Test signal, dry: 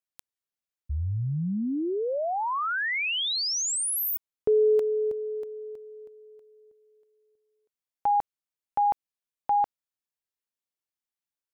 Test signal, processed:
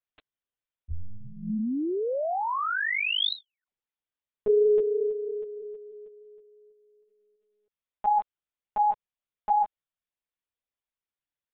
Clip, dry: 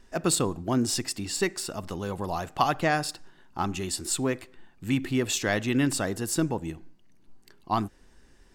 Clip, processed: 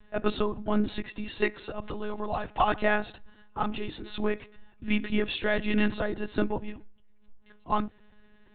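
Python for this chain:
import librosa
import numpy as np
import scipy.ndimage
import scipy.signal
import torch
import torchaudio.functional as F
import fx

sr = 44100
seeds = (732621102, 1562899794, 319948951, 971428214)

y = fx.lpc_monotone(x, sr, seeds[0], pitch_hz=210.0, order=16)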